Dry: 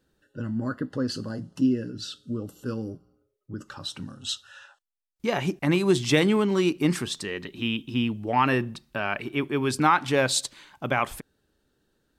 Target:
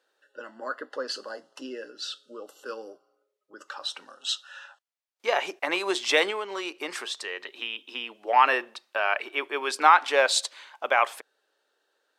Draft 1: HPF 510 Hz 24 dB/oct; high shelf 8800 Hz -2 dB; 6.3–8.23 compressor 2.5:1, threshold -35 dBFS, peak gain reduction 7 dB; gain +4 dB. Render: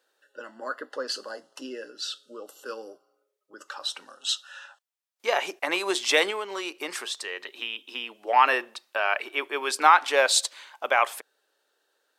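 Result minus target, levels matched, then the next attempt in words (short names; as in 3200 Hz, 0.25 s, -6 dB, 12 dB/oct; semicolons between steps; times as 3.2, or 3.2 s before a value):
8000 Hz band +3.5 dB
HPF 510 Hz 24 dB/oct; high shelf 8800 Hz -13 dB; 6.3–8.23 compressor 2.5:1, threshold -35 dBFS, peak gain reduction 7 dB; gain +4 dB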